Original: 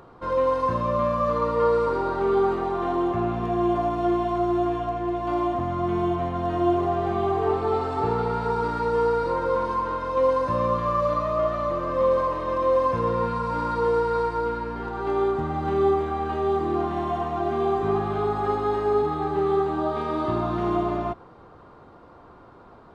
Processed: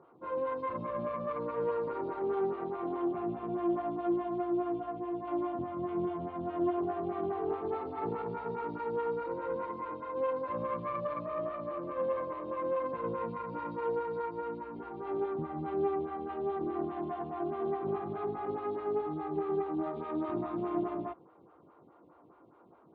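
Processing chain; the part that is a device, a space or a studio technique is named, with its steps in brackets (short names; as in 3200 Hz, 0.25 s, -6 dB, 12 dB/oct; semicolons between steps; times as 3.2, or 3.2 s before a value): vibe pedal into a guitar amplifier (photocell phaser 4.8 Hz; tube stage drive 16 dB, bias 0.55; speaker cabinet 94–3500 Hz, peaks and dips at 160 Hz +5 dB, 320 Hz +7 dB, 1700 Hz -4 dB); gain -7.5 dB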